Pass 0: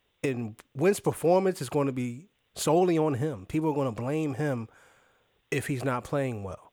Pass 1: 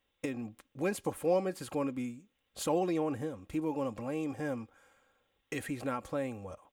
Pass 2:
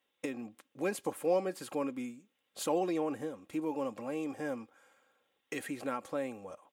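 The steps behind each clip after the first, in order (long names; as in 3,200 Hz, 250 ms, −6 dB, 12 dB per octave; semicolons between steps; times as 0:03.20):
comb filter 3.7 ms, depth 46%; level −7.5 dB
high-pass filter 220 Hz 12 dB per octave; MP3 80 kbit/s 44,100 Hz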